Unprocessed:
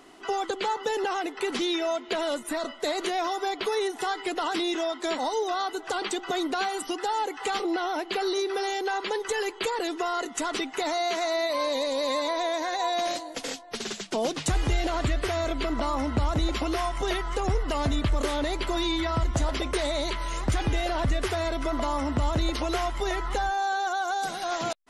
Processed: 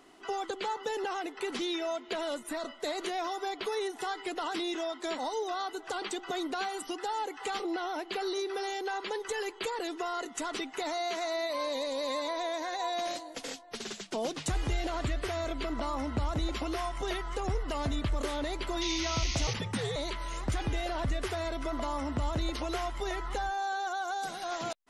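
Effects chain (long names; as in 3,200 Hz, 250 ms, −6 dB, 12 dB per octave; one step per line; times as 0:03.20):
0:18.81–0:19.54: sound drawn into the spectrogram noise 1,900–6,700 Hz −31 dBFS
0:19.47–0:19.96: frequency shifter −160 Hz
level −6 dB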